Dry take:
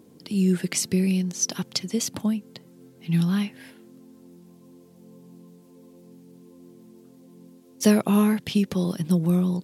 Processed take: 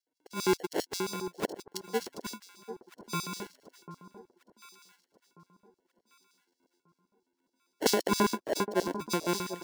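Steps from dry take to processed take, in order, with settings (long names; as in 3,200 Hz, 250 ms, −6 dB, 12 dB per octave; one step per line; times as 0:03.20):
spectral dynamics exaggerated over time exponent 2
decimation without filtering 36×
0:08.11–0:09.01: hollow resonant body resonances 280/620/950/1,600 Hz, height 9 dB, ringing for 20 ms
auto-filter high-pass square 7.5 Hz 390–4,900 Hz
on a send: delay that swaps between a low-pass and a high-pass 744 ms, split 1,200 Hz, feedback 52%, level −11 dB
on the sum: level −1.5 dB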